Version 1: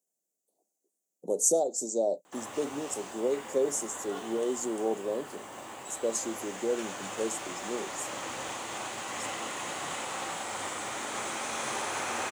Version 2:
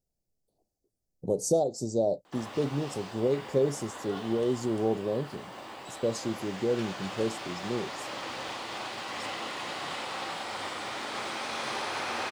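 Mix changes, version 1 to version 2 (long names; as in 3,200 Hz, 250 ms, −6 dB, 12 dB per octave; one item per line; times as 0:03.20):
speech: remove Bessel high-pass filter 340 Hz, order 8
master: add high shelf with overshoot 5,800 Hz −6 dB, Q 3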